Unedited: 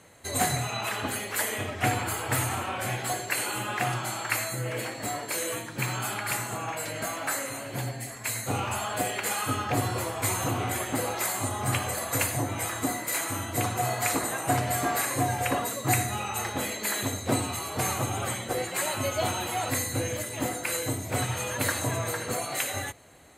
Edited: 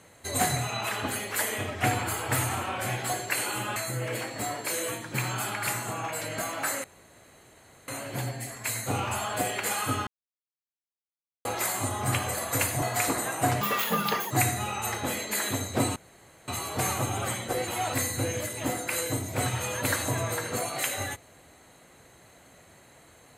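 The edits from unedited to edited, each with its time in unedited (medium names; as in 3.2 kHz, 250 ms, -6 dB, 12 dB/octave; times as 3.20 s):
3.76–4.40 s: delete
7.48 s: insert room tone 1.04 s
9.67–11.05 s: mute
12.42–13.88 s: delete
14.67–15.83 s: speed 166%
17.48 s: insert room tone 0.52 s
18.68–19.44 s: delete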